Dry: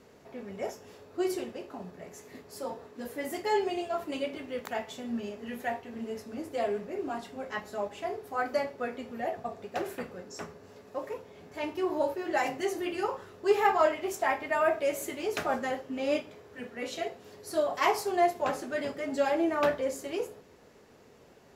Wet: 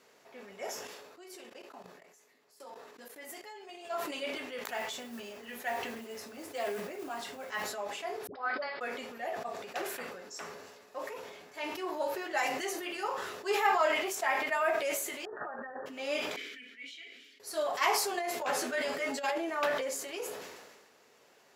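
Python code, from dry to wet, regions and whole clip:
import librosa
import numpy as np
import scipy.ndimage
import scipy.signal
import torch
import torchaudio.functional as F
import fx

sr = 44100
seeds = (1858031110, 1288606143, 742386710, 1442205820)

y = fx.chain(x, sr, fx.highpass(hz=110.0, slope=12),
    fx.level_steps(step_db=21), at=(0.87, 3.85))
y = fx.chain(y, sr, fx.low_shelf(hz=79.0, db=12.0),
    fx.mod_noise(seeds[0], snr_db=28), at=(4.67, 7.71))
y = fx.chain(y, sr, fx.cheby_ripple(hz=5200.0, ripple_db=6),
    fx.dispersion(late='highs', ms=82.0, hz=600.0), at=(8.27, 8.81))
y = fx.chain(y, sr, fx.brickwall_lowpass(high_hz=1900.0),
    fx.over_compress(threshold_db=-37.0, ratio=-0.5), at=(15.25, 15.86))
y = fx.chain(y, sr, fx.vowel_filter(vowel='i'),
    fx.tilt_eq(slope=3.5), at=(16.36, 17.4))
y = fx.chain(y, sr, fx.doubler(ms=12.0, db=-3.0),
    fx.over_compress(threshold_db=-27.0, ratio=-0.5), at=(18.11, 19.38))
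y = fx.highpass(y, sr, hz=1200.0, slope=6)
y = fx.sustainer(y, sr, db_per_s=38.0)
y = y * 10.0 ** (1.0 / 20.0)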